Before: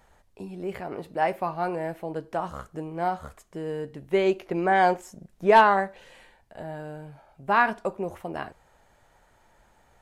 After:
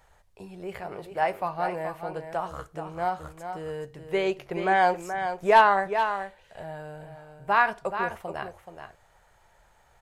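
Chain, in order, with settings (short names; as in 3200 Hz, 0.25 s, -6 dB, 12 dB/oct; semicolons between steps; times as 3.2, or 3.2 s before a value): bell 260 Hz -12 dB 0.83 oct; echo 0.427 s -8.5 dB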